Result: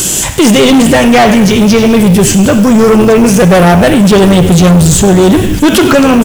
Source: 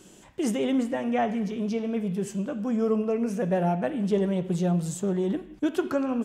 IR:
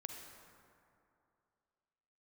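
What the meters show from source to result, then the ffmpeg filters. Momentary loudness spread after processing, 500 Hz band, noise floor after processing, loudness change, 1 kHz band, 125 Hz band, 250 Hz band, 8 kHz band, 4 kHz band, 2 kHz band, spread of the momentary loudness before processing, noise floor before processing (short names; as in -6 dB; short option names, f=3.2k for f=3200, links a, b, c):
2 LU, +20.5 dB, -12 dBFS, +21.5 dB, +22.0 dB, +22.5 dB, +21.0 dB, +30.5 dB, +30.5 dB, +26.5 dB, 5 LU, -52 dBFS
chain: -filter_complex "[0:a]lowshelf=f=160:t=q:w=1.5:g=6,acrossover=split=4500[a][b];[b]acompressor=threshold=-53dB:ratio=4:attack=1:release=60[c];[a][c]amix=inputs=2:normalize=0,asplit=2[d][e];[e]asplit=6[f][g][h][i][j][k];[f]adelay=98,afreqshift=-95,volume=-16dB[l];[g]adelay=196,afreqshift=-190,volume=-20.4dB[m];[h]adelay=294,afreqshift=-285,volume=-24.9dB[n];[i]adelay=392,afreqshift=-380,volume=-29.3dB[o];[j]adelay=490,afreqshift=-475,volume=-33.7dB[p];[k]adelay=588,afreqshift=-570,volume=-38.2dB[q];[l][m][n][o][p][q]amix=inputs=6:normalize=0[r];[d][r]amix=inputs=2:normalize=0,crystalizer=i=5:c=0,acrusher=bits=5:mode=log:mix=0:aa=0.000001,asoftclip=type=tanh:threshold=-29dB,alimiter=level_in=33.5dB:limit=-1dB:release=50:level=0:latency=1,volume=-1dB"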